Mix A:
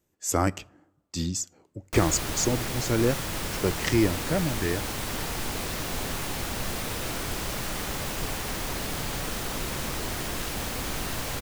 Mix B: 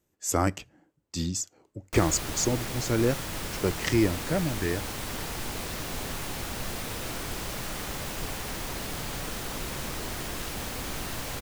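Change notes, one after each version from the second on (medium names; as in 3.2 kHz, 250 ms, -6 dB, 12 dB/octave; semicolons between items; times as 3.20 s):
reverb: off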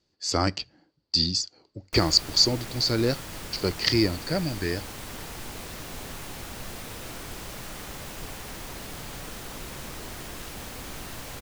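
speech: add resonant low-pass 4.6 kHz, resonance Q 13; background -4.0 dB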